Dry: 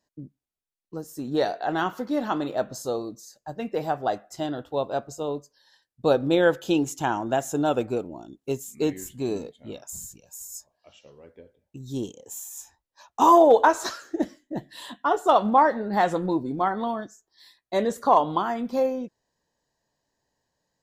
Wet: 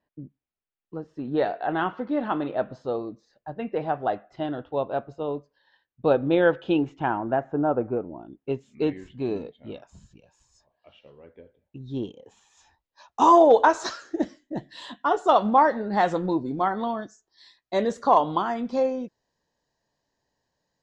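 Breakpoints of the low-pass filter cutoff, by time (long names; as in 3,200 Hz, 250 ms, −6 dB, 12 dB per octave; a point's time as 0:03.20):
low-pass filter 24 dB per octave
0:06.80 3,100 Hz
0:07.75 1,400 Hz
0:08.67 3,500 Hz
0:12.42 3,500 Hz
0:13.26 6,600 Hz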